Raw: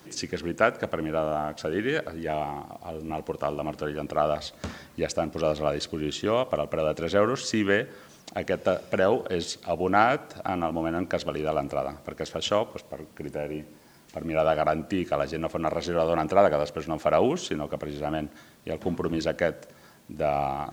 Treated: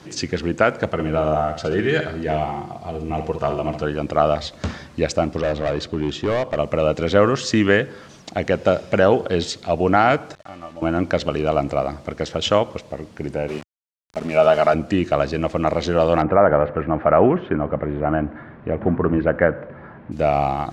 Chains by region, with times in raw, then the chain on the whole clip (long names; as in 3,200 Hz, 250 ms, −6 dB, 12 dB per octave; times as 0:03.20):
0:00.93–0:03.83: notch comb filter 280 Hz + flutter between parallel walls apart 11.1 metres, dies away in 0.47 s
0:05.37–0:06.59: high-shelf EQ 3,400 Hz −8 dB + hard clipping −24 dBFS
0:10.35–0:10.82: parametric band 2,100 Hz +3 dB 1.6 octaves + tuned comb filter 590 Hz, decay 0.34 s, mix 90% + centre clipping without the shift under −51.5 dBFS
0:13.48–0:14.74: high-pass filter 240 Hz 6 dB per octave + comb filter 4.8 ms, depth 54% + centre clipping without the shift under −39 dBFS
0:16.22–0:20.12: mu-law and A-law mismatch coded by mu + low-pass filter 1,900 Hz 24 dB per octave + dynamic equaliser 1,400 Hz, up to +4 dB, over −39 dBFS, Q 1.5
whole clip: low-pass filter 6,700 Hz 12 dB per octave; parametric band 87 Hz +5 dB 1.8 octaves; boost into a limiter +8 dB; level −1 dB